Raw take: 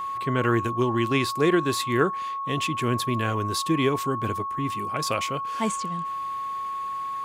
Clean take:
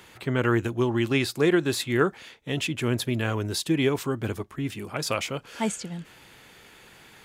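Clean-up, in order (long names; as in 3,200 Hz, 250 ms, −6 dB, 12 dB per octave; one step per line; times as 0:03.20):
notch filter 1,100 Hz, Q 30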